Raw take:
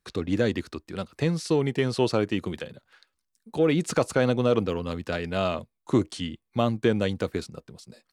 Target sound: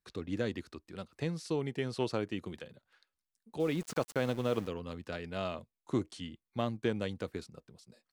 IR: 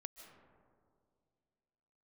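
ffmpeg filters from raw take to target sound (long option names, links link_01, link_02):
-filter_complex "[0:a]asplit=3[link_01][link_02][link_03];[link_01]afade=type=out:start_time=3.59:duration=0.02[link_04];[link_02]aeval=exprs='val(0)*gte(abs(val(0)),0.0224)':channel_layout=same,afade=type=in:start_time=3.59:duration=0.02,afade=type=out:start_time=4.67:duration=0.02[link_05];[link_03]afade=type=in:start_time=4.67:duration=0.02[link_06];[link_04][link_05][link_06]amix=inputs=3:normalize=0,aeval=exprs='0.335*(cos(1*acos(clip(val(0)/0.335,-1,1)))-cos(1*PI/2))+0.0266*(cos(3*acos(clip(val(0)/0.335,-1,1)))-cos(3*PI/2))':channel_layout=same,volume=-8.5dB"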